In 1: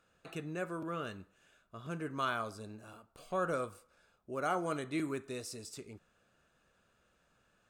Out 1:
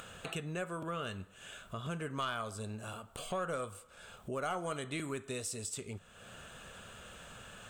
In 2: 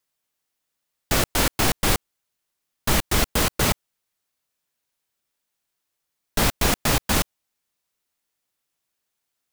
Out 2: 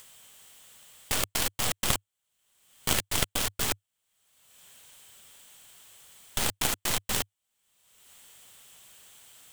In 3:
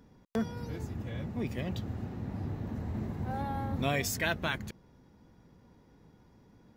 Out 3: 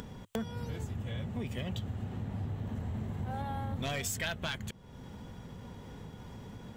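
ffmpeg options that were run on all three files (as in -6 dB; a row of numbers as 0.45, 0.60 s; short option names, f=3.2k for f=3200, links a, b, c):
-af "equalizer=f=100:t=o:w=0.33:g=4,equalizer=f=315:t=o:w=0.33:g=-8,equalizer=f=3.15k:t=o:w=0.33:g=8,equalizer=f=5k:t=o:w=0.33:g=-4,equalizer=f=8k:t=o:w=0.33:g=8,aeval=exprs='0.562*(cos(1*acos(clip(val(0)/0.562,-1,1)))-cos(1*PI/2))+0.251*(cos(3*acos(clip(val(0)/0.562,-1,1)))-cos(3*PI/2))+0.1*(cos(6*acos(clip(val(0)/0.562,-1,1)))-cos(6*PI/2))+0.0501*(cos(8*acos(clip(val(0)/0.562,-1,1)))-cos(8*PI/2))':c=same,acompressor=mode=upward:threshold=-27dB:ratio=2.5"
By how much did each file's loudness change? -2.0, -6.5, -3.5 LU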